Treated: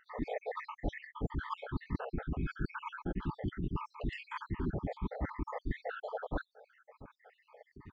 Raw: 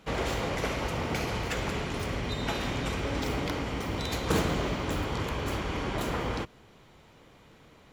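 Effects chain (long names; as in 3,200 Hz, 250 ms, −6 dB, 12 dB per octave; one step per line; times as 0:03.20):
time-frequency cells dropped at random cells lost 79%
notch filter 3,700 Hz, Q 22
reversed playback
downward compressor 6 to 1, threshold −43 dBFS, peak gain reduction 15 dB
reversed playback
pitch shifter −8 semitones
head-to-tape spacing loss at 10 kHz 38 dB
level +11.5 dB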